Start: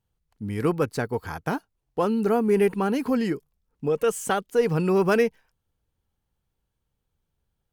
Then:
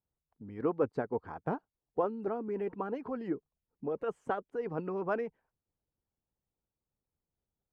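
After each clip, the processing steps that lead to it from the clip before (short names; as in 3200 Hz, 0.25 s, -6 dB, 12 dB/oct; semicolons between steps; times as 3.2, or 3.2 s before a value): band-pass 790 Hz, Q 0.68; tilt -4 dB/oct; harmonic-percussive split harmonic -11 dB; gain -6.5 dB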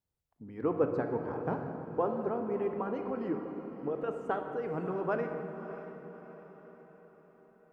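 diffused feedback echo 0.61 s, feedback 48%, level -11.5 dB; on a send at -5 dB: reverb RT60 2.1 s, pre-delay 22 ms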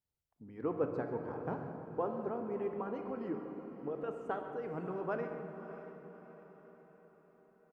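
echo 0.135 s -15.5 dB; gain -5 dB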